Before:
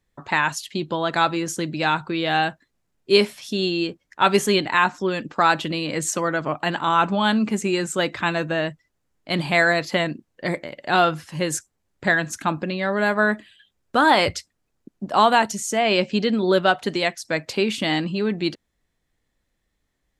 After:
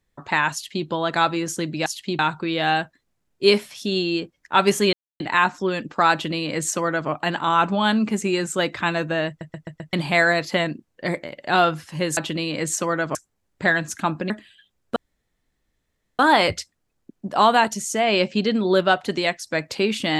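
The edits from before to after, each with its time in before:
0.53–0.86 copy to 1.86
4.6 insert silence 0.27 s
5.52–6.5 copy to 11.57
8.68 stutter in place 0.13 s, 5 plays
12.72–13.31 cut
13.97 insert room tone 1.23 s

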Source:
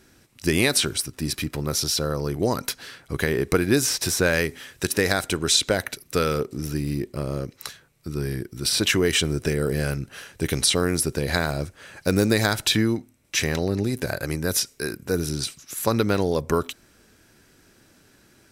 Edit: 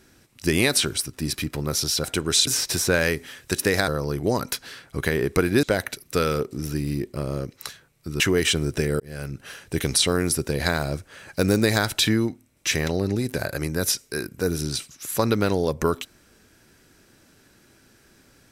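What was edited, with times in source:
2.04–3.79 swap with 5.2–5.63
8.2–8.88 cut
9.68–10.15 fade in

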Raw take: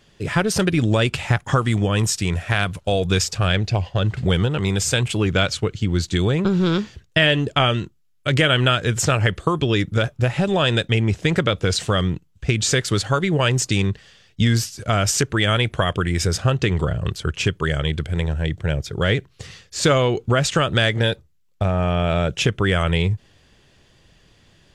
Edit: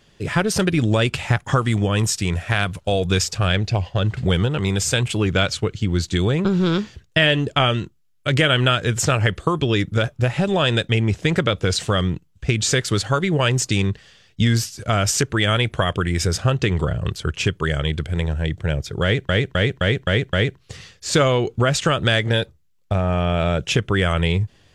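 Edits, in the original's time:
19.03–19.29 loop, 6 plays

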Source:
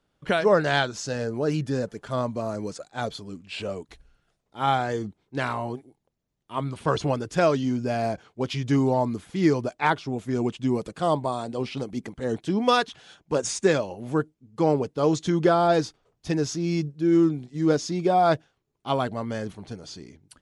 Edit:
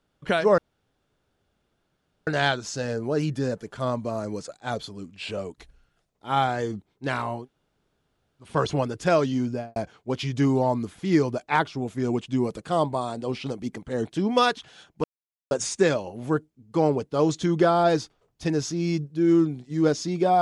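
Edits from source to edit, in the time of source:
0.58 insert room tone 1.69 s
5.72–6.78 room tone, crossfade 0.16 s
7.78–8.07 studio fade out
13.35 insert silence 0.47 s

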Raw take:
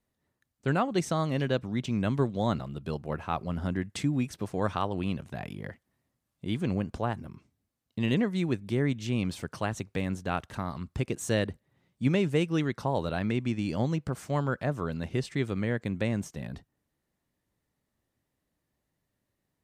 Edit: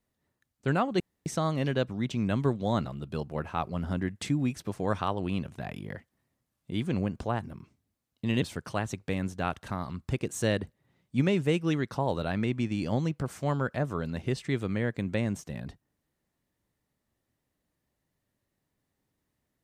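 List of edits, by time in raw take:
1 insert room tone 0.26 s
8.16–9.29 cut

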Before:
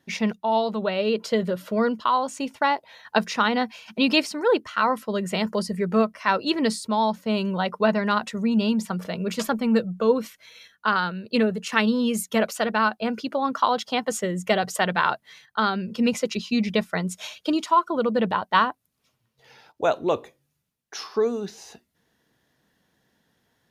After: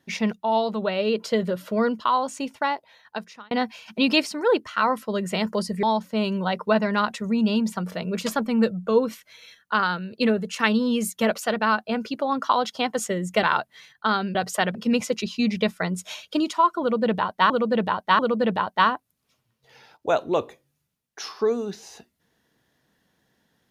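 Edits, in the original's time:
2.34–3.51 fade out
5.83–6.96 cut
14.56–14.96 move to 15.88
17.94–18.63 loop, 3 plays

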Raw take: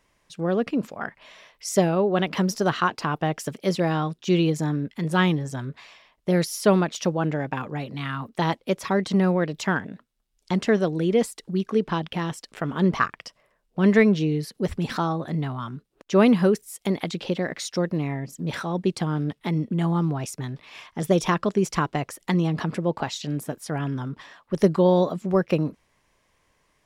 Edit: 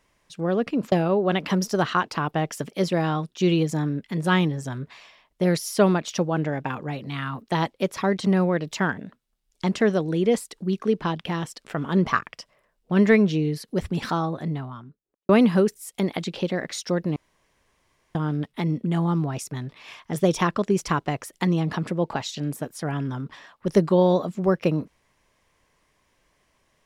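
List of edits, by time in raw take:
0.92–1.79 cut
15.11–16.16 studio fade out
18.03–19.02 room tone

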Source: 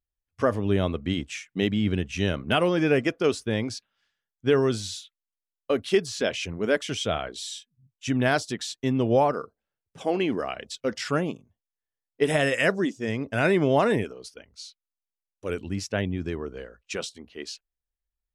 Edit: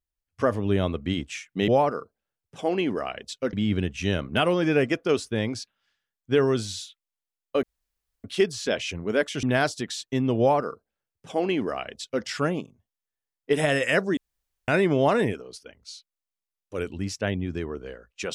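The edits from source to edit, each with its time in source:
5.78 insert room tone 0.61 s
6.97–8.14 cut
9.1–10.95 copy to 1.68
12.88–13.39 room tone

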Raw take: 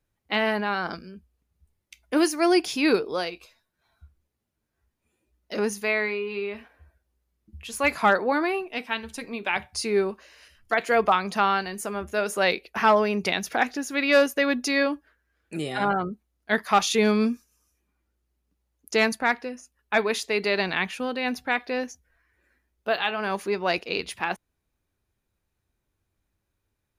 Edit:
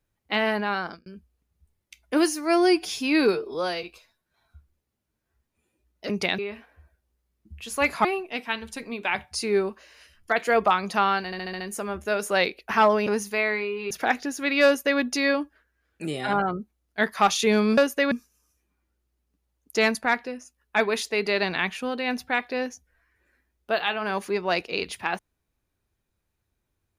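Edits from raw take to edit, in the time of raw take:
0.77–1.06 fade out
2.26–3.31 stretch 1.5×
5.57–6.41 swap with 13.13–13.42
8.07–8.46 cut
11.67 stutter 0.07 s, 6 plays
14.17–14.51 copy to 17.29

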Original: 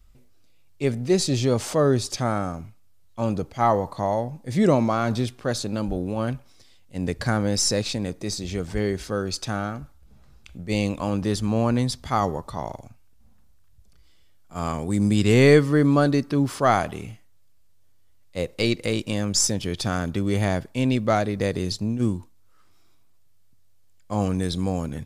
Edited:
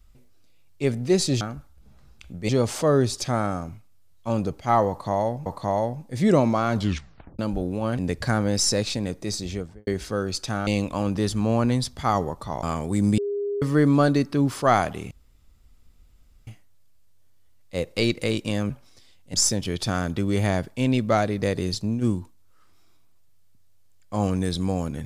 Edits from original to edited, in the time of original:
3.81–4.38 loop, 2 plays
5.1 tape stop 0.64 s
6.33–6.97 move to 19.32
8.44–8.86 studio fade out
9.66–10.74 move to 1.41
12.7–14.61 cut
15.16–15.6 bleep 406 Hz -24 dBFS
17.09 insert room tone 1.36 s

